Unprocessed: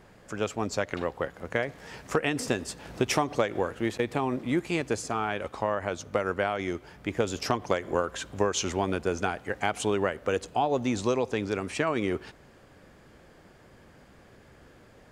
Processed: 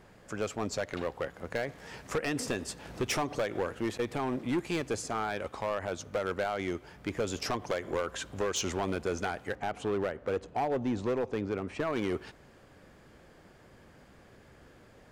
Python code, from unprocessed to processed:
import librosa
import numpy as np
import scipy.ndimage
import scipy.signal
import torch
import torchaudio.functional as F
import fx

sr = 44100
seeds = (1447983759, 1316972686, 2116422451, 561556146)

y = fx.lowpass(x, sr, hz=1300.0, slope=6, at=(9.55, 11.93))
y = np.clip(10.0 ** (23.0 / 20.0) * y, -1.0, 1.0) / 10.0 ** (23.0 / 20.0)
y = y * 10.0 ** (-2.0 / 20.0)